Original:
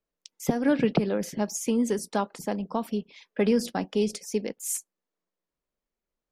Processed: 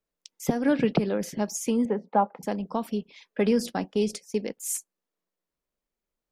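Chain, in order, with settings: 1.85–2.43 speaker cabinet 160–2100 Hz, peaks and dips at 200 Hz +3 dB, 330 Hz -7 dB, 530 Hz +6 dB, 820 Hz +9 dB, 1700 Hz -4 dB; 3.92–4.41 gate -37 dBFS, range -13 dB

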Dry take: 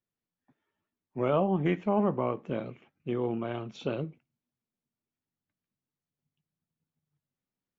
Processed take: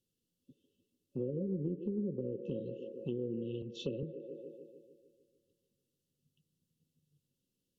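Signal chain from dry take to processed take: treble ducked by the level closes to 440 Hz, closed at -22.5 dBFS; FFT band-reject 560–2600 Hz; on a send: band-limited delay 0.149 s, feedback 58%, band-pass 650 Hz, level -9 dB; on the sum: compressor 2.5:1, threshold -48 dBFS, peak gain reduction 16 dB; 3.62–4.03 three-band expander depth 70%; gain +7 dB

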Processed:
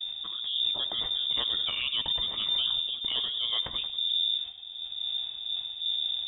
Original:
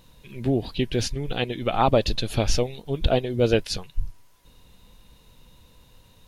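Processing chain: wind noise 83 Hz -30 dBFS; expander -40 dBFS; bell 85 Hz +7 dB 0.69 oct; reverse; compressor 6:1, threshold -30 dBFS, peak gain reduction 17.5 dB; reverse; transient shaper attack -4 dB, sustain +6 dB; on a send: split-band echo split 360 Hz, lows 0.645 s, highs 97 ms, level -14 dB; on the sum: inverted band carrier 3600 Hz; gain +2 dB

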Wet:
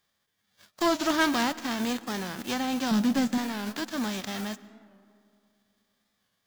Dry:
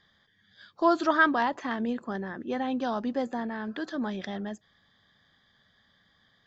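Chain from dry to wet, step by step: spectral whitening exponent 0.3; 2.91–3.38 bell 180 Hz +14.5 dB 1.1 oct; sample leveller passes 2; digital reverb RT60 2.6 s, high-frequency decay 0.4×, pre-delay 80 ms, DRR 17.5 dB; record warp 45 rpm, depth 100 cents; gain -6.5 dB

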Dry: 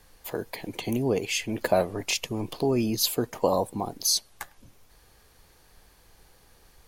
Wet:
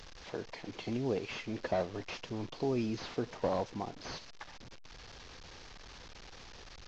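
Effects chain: delta modulation 32 kbps, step -36.5 dBFS; gain -8 dB

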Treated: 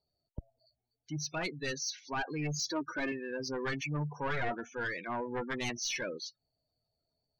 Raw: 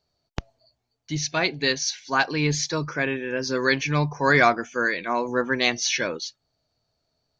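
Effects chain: one-sided fold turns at -20 dBFS; spectral gate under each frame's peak -15 dB strong; 2.59–3.12 comb 3.3 ms, depth 97%; soft clip -17 dBFS, distortion -16 dB; gain -8.5 dB

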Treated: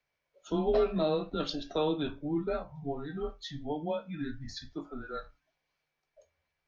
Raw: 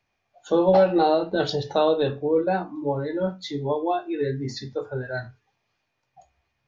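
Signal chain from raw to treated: frequency shift -150 Hz; low shelf 400 Hz -6 dB; gain -6.5 dB

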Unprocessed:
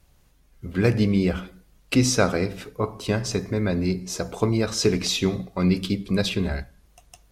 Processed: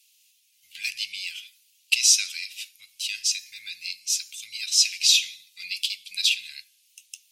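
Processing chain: elliptic high-pass 2600 Hz, stop band 60 dB; gain +8.5 dB

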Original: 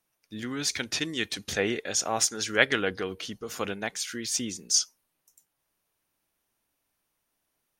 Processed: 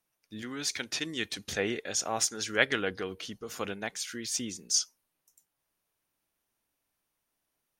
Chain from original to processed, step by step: 0.42–1.06 low shelf 150 Hz -8.5 dB; gain -3.5 dB

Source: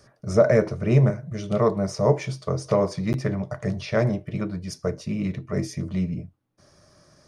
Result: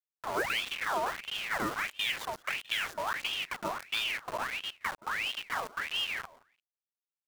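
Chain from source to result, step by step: low-pass opened by the level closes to 480 Hz, open at -15 dBFS; low shelf 76 Hz -10 dB; in parallel at +2 dB: limiter -16 dBFS, peak gain reduction 10.5 dB; on the sum: compressor 2.5:1, threshold -22 dBFS, peak gain reduction 9.5 dB; bit-crush 5-bit; on a send: feedback echo 0.172 s, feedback 18%, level -21 dB; on the sum: ring modulator with a swept carrier 1900 Hz, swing 60%, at 1.5 Hz; gain -7.5 dB

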